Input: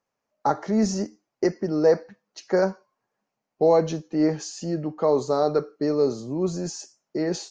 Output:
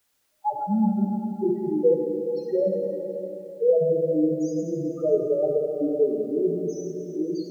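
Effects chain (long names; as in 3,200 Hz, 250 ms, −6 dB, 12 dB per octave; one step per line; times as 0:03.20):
spectral peaks only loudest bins 2
bit-depth reduction 12 bits, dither triangular
dense smooth reverb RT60 4 s, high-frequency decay 0.5×, DRR 0.5 dB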